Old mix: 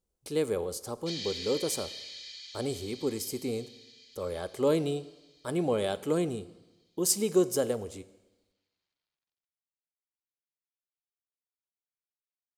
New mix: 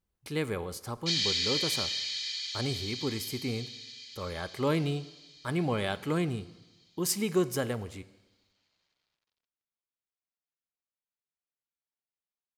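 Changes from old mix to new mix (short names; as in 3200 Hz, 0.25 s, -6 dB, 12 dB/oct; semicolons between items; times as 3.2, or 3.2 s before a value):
speech: add graphic EQ 125/500/1000/2000/8000 Hz +7/-7/+3/+8/-6 dB; background +9.5 dB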